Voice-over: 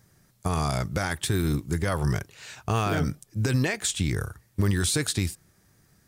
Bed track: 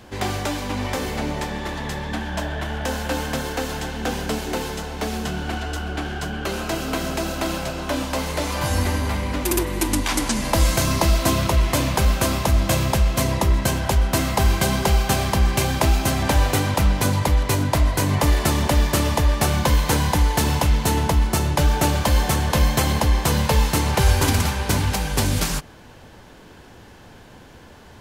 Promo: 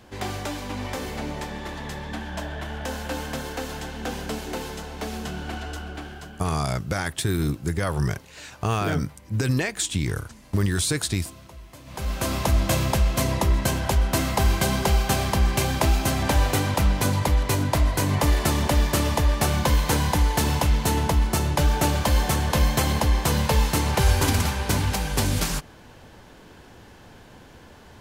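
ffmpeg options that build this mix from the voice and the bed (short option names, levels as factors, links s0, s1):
-filter_complex "[0:a]adelay=5950,volume=1.12[s0];[1:a]volume=7.5,afade=t=out:st=5.68:d=0.94:silence=0.1,afade=t=in:st=11.85:d=0.59:silence=0.0707946[s1];[s0][s1]amix=inputs=2:normalize=0"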